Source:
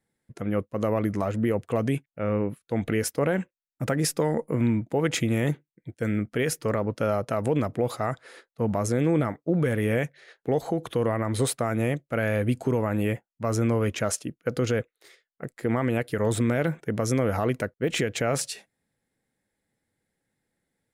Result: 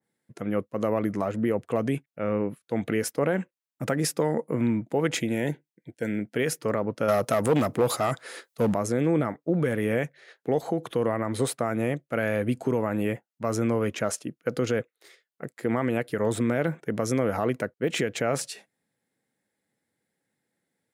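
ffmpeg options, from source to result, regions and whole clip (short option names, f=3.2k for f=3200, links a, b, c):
-filter_complex "[0:a]asettb=1/sr,asplit=3[a][b][c];[a]atrim=end=5.174[d];[b]atrim=start=5.17:end=6.36,asetpts=PTS-STARTPTS,afade=t=in:d=0.004:c=qsin,afade=t=out:st=1.186:d=0.004:c=qsin,asuperstop=centerf=1200:order=4:qfactor=3.2,lowshelf=f=91:g=-9.5[e];[c]atrim=start=6.356[f];[d][e]acrossfade=d=0.004:c1=hsin:c2=qsin[g];[g][f]acrossfade=d=0.004:c1=qsin:c2=hsin,asettb=1/sr,asplit=3[h][i][j];[h]atrim=end=7.084[k];[i]atrim=start=7.08:end=8.74,asetpts=PTS-STARTPTS,afade=t=in:d=0.004:c=qsin,afade=t=out:st=1.656:d=0.004:c=qsin,highshelf=f=3.4k:g=11.5,acontrast=26,aeval=exprs='clip(val(0),-1,0.133)':c=same[l];[j]atrim=start=8.736[m];[k][l]acrossfade=d=0.004:c1=hsin:c2=qsin[n];[n][m]acrossfade=d=0.004:c1=qsin:c2=hsin,highpass=140,adynamicequalizer=threshold=0.00794:dfrequency=2200:dqfactor=0.7:tfrequency=2200:tqfactor=0.7:attack=5:release=100:ratio=0.375:range=2:mode=cutabove:tftype=highshelf"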